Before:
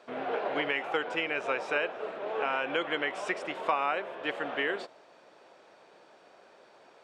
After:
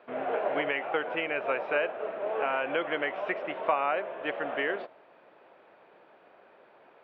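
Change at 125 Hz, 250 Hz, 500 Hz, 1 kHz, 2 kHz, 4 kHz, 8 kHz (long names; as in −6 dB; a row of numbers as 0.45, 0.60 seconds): 0.0 dB, 0.0 dB, +3.0 dB, +1.0 dB, 0.0 dB, −4.0 dB, below −25 dB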